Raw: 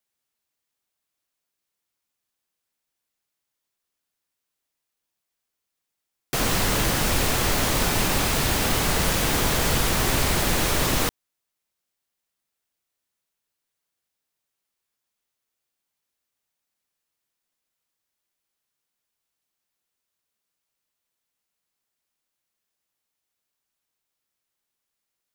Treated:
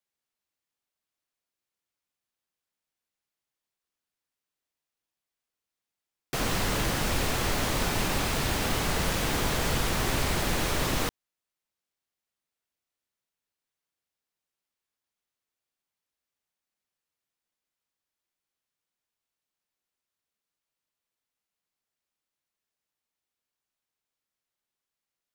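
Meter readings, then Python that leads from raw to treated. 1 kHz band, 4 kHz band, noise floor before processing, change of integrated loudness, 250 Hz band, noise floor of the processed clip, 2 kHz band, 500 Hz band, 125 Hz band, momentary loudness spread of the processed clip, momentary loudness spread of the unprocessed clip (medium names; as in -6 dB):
-4.5 dB, -5.5 dB, -83 dBFS, -6.0 dB, -4.5 dB, under -85 dBFS, -5.0 dB, -4.5 dB, -4.5 dB, 2 LU, 2 LU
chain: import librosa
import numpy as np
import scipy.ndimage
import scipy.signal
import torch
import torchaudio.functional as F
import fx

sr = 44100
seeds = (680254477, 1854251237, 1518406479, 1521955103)

y = fx.high_shelf(x, sr, hz=6900.0, db=-5.5)
y = F.gain(torch.from_numpy(y), -4.5).numpy()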